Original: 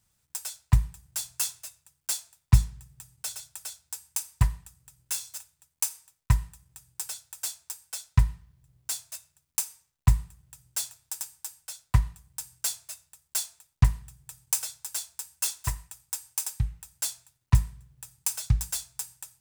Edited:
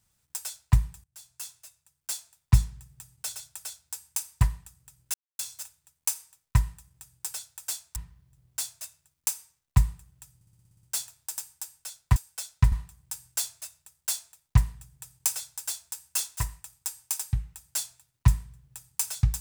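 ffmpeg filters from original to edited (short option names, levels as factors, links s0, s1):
-filter_complex "[0:a]asplit=14[s0][s1][s2][s3][s4][s5][s6][s7][s8][s9][s10][s11][s12][s13];[s0]atrim=end=1.04,asetpts=PTS-STARTPTS,afade=t=out:st=1.036:d=0.004:c=hsin:silence=0.0794328[s14];[s1]atrim=start=1.04:end=5.14,asetpts=PTS-STARTPTS,afade=t=in:d=1.69:silence=0.0794328,afade=t=out:st=4.096:d=0.004:c=hsin,apad=pad_dur=0.25[s15];[s2]atrim=start=5.14:end=7.712,asetpts=PTS-STARTPTS,afade=t=in:d=0.004:c=hsin[s16];[s3]atrim=start=8.268:end=10.722[s17];[s4]atrim=start=10.658:end=10.722[s18];[s5]atrim=start=10.658:end=10.722[s19];[s6]atrim=start=10.658:end=10.722[s20];[s7]atrim=start=10.658:end=10.722[s21];[s8]atrim=start=10.658:end=10.722[s22];[s9]atrim=start=10.658:end=10.722[s23];[s10]atrim=start=10.658:end=10.722[s24];[s11]atrim=start=10.658:end=11.992[s25];[s12]atrim=start=7.708:end=8.272[s26];[s13]atrim=start=11.988[s27];[s14][s15][s16]concat=n=3:v=0:a=1[s28];[s28][s17]acrossfade=d=0.004:c1=hsin:c2=hsin[s29];[s29][s18]acrossfade=d=0.004:c1=hsin:c2=hsin[s30];[s30][s19]acrossfade=d=0.004:c1=hsin:c2=hsin[s31];[s31][s20]acrossfade=d=0.004:c1=hsin:c2=hsin[s32];[s32][s21]acrossfade=d=0.004:c1=hsin:c2=hsin[s33];[s33][s22]acrossfade=d=0.004:c1=hsin:c2=hsin[s34];[s34][s23]acrossfade=d=0.004:c1=hsin:c2=hsin[s35];[s35][s24]acrossfade=d=0.004:c1=hsin:c2=hsin[s36];[s36][s25]acrossfade=d=0.004:c1=hsin:c2=hsin[s37];[s37][s26]acrossfade=d=0.004:c1=hsin:c2=hsin[s38];[s38][s27]acrossfade=d=0.004:c1=hsin:c2=hsin"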